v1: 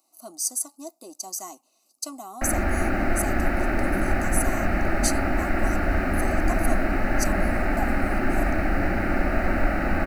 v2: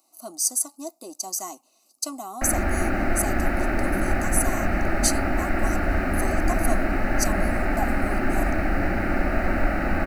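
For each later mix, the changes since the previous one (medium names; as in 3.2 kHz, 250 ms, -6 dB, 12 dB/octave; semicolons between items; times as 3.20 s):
speech +3.5 dB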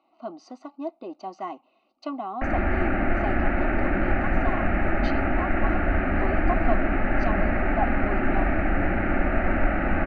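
speech +3.5 dB; master: add steep low-pass 3.1 kHz 36 dB/octave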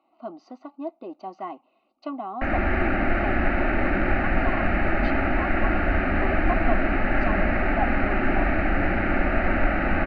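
background: remove distance through air 480 m; master: add distance through air 160 m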